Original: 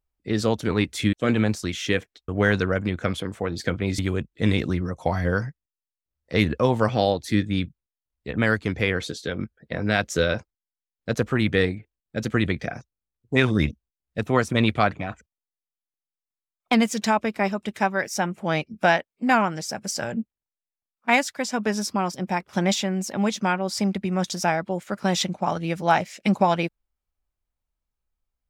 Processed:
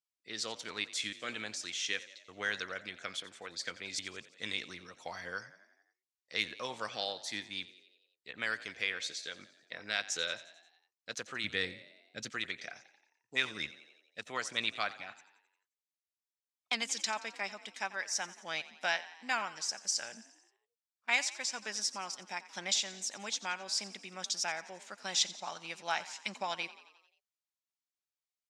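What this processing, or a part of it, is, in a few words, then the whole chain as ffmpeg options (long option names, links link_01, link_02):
piezo pickup straight into a mixer: -filter_complex "[0:a]lowpass=7900,asettb=1/sr,asplit=3[link_01][link_02][link_03];[link_01]atrim=end=11.444[link_04];[link_02]atrim=start=11.44:end=12.3,asetpts=PTS-STARTPTS,afade=type=in:duration=0.004:curve=qsin,afade=type=out:start_time=0.856:duration=0.004:curve=qsin,lowshelf=frequency=240:gain=12[link_05];[link_03]atrim=start=12.296[link_06];[link_04][link_05]acrossfade=duration=0.004:curve1=hsin:curve2=qsin[link_07];[link_07][link_06]acrossfade=duration=0.004:curve1=qsin:curve2=hsin,lowpass=7300,aderivative,asplit=7[link_08][link_09][link_10][link_11][link_12][link_13][link_14];[link_09]adelay=88,afreqshift=41,volume=-17dB[link_15];[link_10]adelay=176,afreqshift=82,volume=-21.4dB[link_16];[link_11]adelay=264,afreqshift=123,volume=-25.9dB[link_17];[link_12]adelay=352,afreqshift=164,volume=-30.3dB[link_18];[link_13]adelay=440,afreqshift=205,volume=-34.7dB[link_19];[link_14]adelay=528,afreqshift=246,volume=-39.2dB[link_20];[link_08][link_15][link_16][link_17][link_18][link_19][link_20]amix=inputs=7:normalize=0,volume=2dB"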